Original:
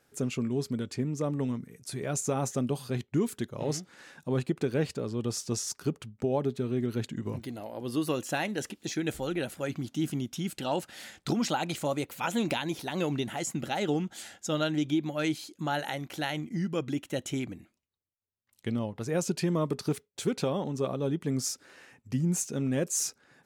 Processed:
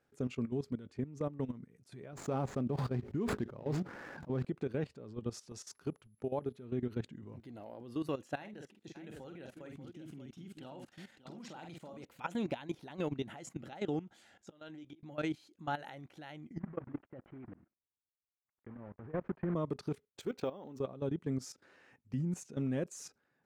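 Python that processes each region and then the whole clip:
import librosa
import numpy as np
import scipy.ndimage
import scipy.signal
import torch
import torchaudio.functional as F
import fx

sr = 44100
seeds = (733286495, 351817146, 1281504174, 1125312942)

y = fx.chain(x, sr, fx.median_filter(points=15),
    fx.sustainer(db_per_s=21.0), at=(2.12, 4.45))
y = fx.low_shelf(y, sr, hz=370.0, db=-4.0, at=(5.33, 6.64), fade=0.02)
y = fx.dmg_tone(y, sr, hz=11000.0, level_db=-58.0, at=(5.33, 6.64), fade=0.02)
y = fx.chain(y, sr, fx.highpass(hz=77.0, slope=12),
    fx.level_steps(step_db=12),
    fx.echo_multitap(ms=(47, 587), db=(-7.0, -9.0)), at=(8.36, 12.05))
y = fx.chain(y, sr, fx.low_shelf(hz=190.0, db=-9.0),
    fx.auto_swell(attack_ms=647.0),
    fx.doubler(ms=17.0, db=-13.5), at=(14.42, 15.03))
y = fx.chain(y, sr, fx.block_float(bits=3),
    fx.lowpass(hz=1800.0, slope=24),
    fx.level_steps(step_db=14), at=(16.59, 19.56))
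y = fx.chain(y, sr, fx.peak_eq(hz=150.0, db=-9.0, octaves=0.88),
    fx.resample_bad(factor=2, down='none', up='hold'), at=(20.2, 20.8))
y = fx.lowpass(y, sr, hz=2100.0, slope=6)
y = fx.level_steps(y, sr, step_db=15)
y = F.gain(torch.from_numpy(y), -3.5).numpy()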